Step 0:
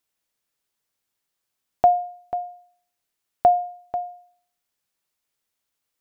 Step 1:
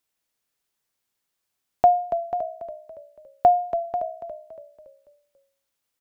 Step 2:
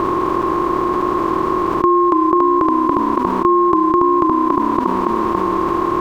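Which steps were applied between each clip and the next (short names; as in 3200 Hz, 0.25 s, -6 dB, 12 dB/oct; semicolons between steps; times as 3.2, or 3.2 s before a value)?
frequency-shifting echo 0.282 s, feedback 46%, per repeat -32 Hz, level -10 dB
per-bin compression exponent 0.2; ring modulator 360 Hz; fast leveller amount 70%; gain +1.5 dB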